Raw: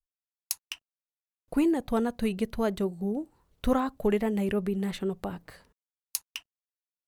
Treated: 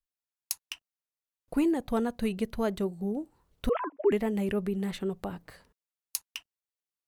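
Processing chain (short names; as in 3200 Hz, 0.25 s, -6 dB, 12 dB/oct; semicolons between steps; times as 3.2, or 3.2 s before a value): 3.69–4.12 sine-wave speech; gain -1.5 dB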